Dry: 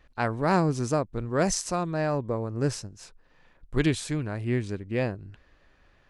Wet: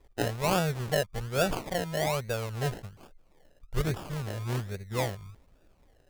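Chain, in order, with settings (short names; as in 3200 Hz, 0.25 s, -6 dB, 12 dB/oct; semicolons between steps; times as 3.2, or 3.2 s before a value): fixed phaser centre 1100 Hz, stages 6; decimation with a swept rate 30×, swing 60% 1.2 Hz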